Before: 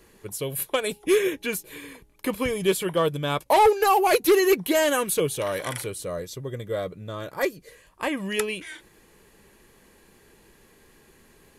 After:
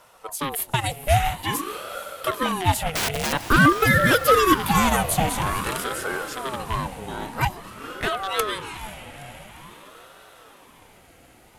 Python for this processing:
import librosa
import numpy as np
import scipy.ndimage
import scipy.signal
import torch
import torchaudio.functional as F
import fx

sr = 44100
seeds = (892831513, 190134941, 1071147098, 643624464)

p1 = fx.rattle_buzz(x, sr, strikes_db=-33.0, level_db=-23.0)
p2 = fx.overflow_wrap(p1, sr, gain_db=21.0, at=(2.93, 3.33))
p3 = p2 + fx.echo_diffused(p2, sr, ms=472, feedback_pct=62, wet_db=-12.0, dry=0)
p4 = fx.ring_lfo(p3, sr, carrier_hz=630.0, swing_pct=55, hz=0.49)
y = F.gain(torch.from_numpy(p4), 4.5).numpy()